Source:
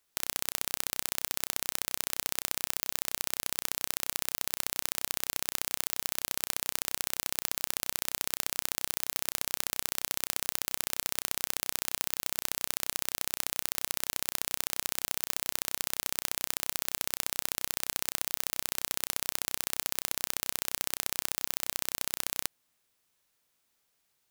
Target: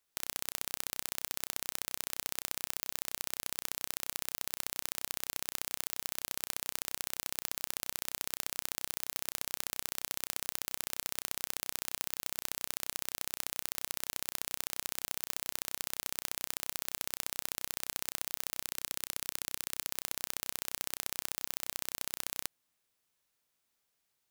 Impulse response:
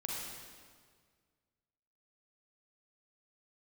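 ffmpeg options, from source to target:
-filter_complex "[0:a]asettb=1/sr,asplit=3[s0][s1][s2];[s0]atrim=end=18.644[s3];[s1]atrim=start=18.64:end=19.89,asetpts=PTS-STARTPTS,afade=t=in:d=0.004:c=qsin,afade=t=out:st=1.246:d=0.004:c=qsin,equalizer=f=640:t=o:w=0.73:g=-9[s4];[s2]atrim=start=19.886[s5];[s3][s4]acrossfade=d=0.004:c1=hsin:c2=qsin[s6];[s6][s5]acrossfade=d=0.004:c1=qsin:c2=hsin,volume=0.562"

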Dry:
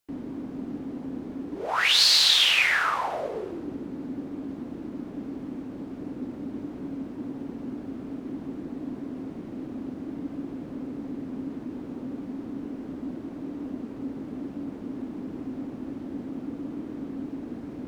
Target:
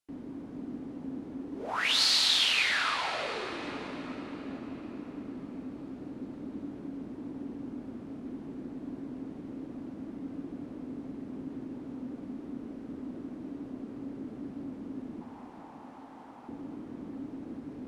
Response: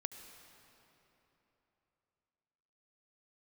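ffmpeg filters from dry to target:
-filter_complex "[0:a]asettb=1/sr,asplit=3[s0][s1][s2];[s0]atrim=end=15.214[s3];[s1]atrim=start=15.21:end=16.49,asetpts=PTS-STARTPTS,afade=t=in:d=0.004:c=qsin,afade=t=out:st=1.276:d=0.004:c=qsin,highpass=f=860:t=q:w=3.8[s4];[s2]atrim=start=16.486[s5];[s3][s4]acrossfade=d=0.004:c1=hsin:c2=qsin[s6];[s6][s5]acrossfade=d=0.004:c1=qsin:c2=hsin[s7];[1:a]atrim=start_sample=2205,asetrate=22050,aresample=44100[s8];[s7][s8]afir=irnorm=-1:irlink=0,volume=0.422"

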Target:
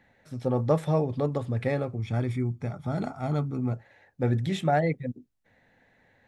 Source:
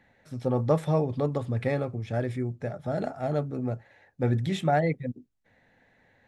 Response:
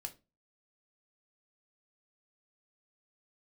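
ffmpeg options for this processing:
-filter_complex "[0:a]asettb=1/sr,asplit=3[s0][s1][s2];[s0]atrim=end=1.994[s3];[s1]atrim=start=1.99:end=3.73,asetpts=PTS-STARTPTS,afade=t=in:d=0.004:c=qsin,afade=t=out:st=1.736:d=0.004:c=qsin,aecho=1:1:0.9:0.59,atrim=end_sample=76734[s4];[s2]atrim=start=3.726[s5];[s3][s4]acrossfade=d=0.004:c1=hsin:c2=qsin[s6];[s6][s5]acrossfade=d=0.004:c1=qsin:c2=hsin"

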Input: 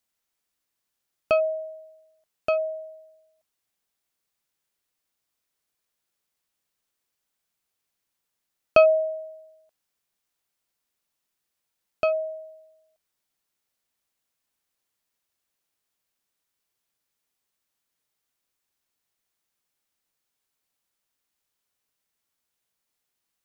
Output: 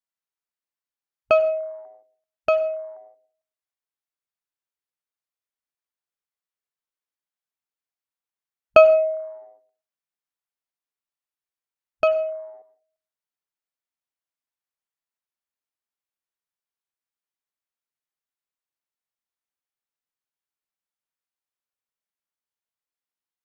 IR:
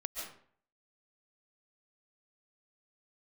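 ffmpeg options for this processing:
-filter_complex "[0:a]afwtdn=0.00708,equalizer=f=1200:w=0.45:g=6.5,asplit=2[s0][s1];[1:a]atrim=start_sample=2205,afade=t=out:st=0.37:d=0.01,atrim=end_sample=16758,asetrate=66150,aresample=44100[s2];[s1][s2]afir=irnorm=-1:irlink=0,volume=0.531[s3];[s0][s3]amix=inputs=2:normalize=0,volume=0.75"

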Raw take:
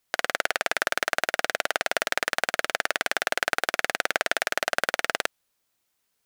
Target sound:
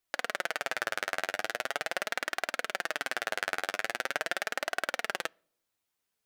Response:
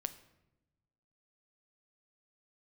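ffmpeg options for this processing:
-filter_complex "[0:a]flanger=delay=2.5:depth=8.6:regen=25:speed=0.42:shape=triangular,asplit=2[s0][s1];[1:a]atrim=start_sample=2205,asetrate=83790,aresample=44100,lowpass=4700[s2];[s1][s2]afir=irnorm=-1:irlink=0,volume=0.376[s3];[s0][s3]amix=inputs=2:normalize=0,volume=0.596"

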